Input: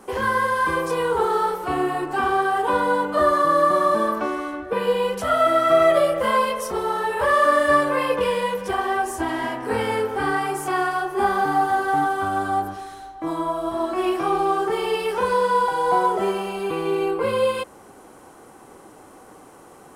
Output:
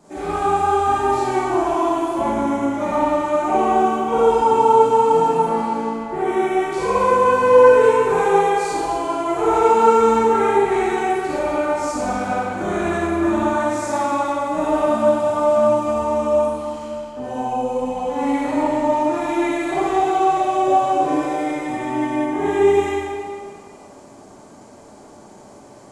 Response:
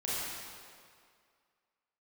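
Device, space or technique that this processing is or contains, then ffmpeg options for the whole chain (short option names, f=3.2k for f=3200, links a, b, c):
slowed and reverbed: -filter_complex "[0:a]asetrate=33957,aresample=44100[a];[1:a]atrim=start_sample=2205[b];[a][b]afir=irnorm=-1:irlink=0,volume=-3dB"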